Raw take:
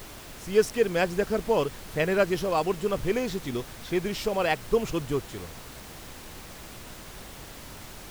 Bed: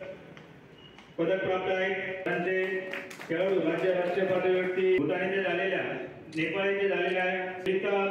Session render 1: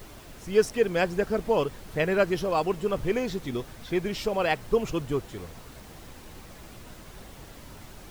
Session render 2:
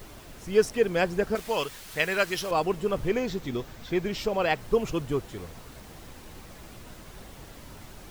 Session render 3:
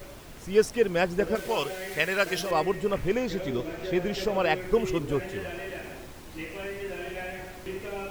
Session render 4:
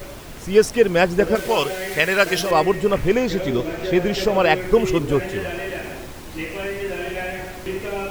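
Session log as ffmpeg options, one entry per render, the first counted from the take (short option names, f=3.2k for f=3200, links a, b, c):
-af "afftdn=nr=6:nf=-44"
-filter_complex "[0:a]asettb=1/sr,asplit=3[a][b][c];[a]atrim=end=1.354[d];[b]atrim=start=1.35:end=2.51,asetpts=PTS-STARTPTS,afade=t=in:d=0.004:c=qsin,afade=t=out:st=1.156:d=0.004:c=qsin,tiltshelf=f=1.1k:g=-8.5[e];[c]atrim=start=2.506[f];[d][e]acrossfade=d=0.004:c1=hsin:c2=qsin[g];[g][f]acrossfade=d=0.004:c1=qsin:c2=hsin,asettb=1/sr,asplit=3[h][i][j];[h]atrim=end=3.084[k];[i]atrim=start=3.08:end=4.58,asetpts=PTS-STARTPTS,afade=t=in:d=0.004:c=qsin,afade=t=out:st=1.496:d=0.004:c=qsin,equalizer=f=9.9k:w=4.6:g=-12[l];[j]atrim=start=4.576[m];[k][l]acrossfade=d=0.004:c1=hsin:c2=qsin[n];[n][m]acrossfade=d=0.004:c1=qsin:c2=hsin"
-filter_complex "[1:a]volume=-8.5dB[a];[0:a][a]amix=inputs=2:normalize=0"
-af "volume=8.5dB,alimiter=limit=-3dB:level=0:latency=1"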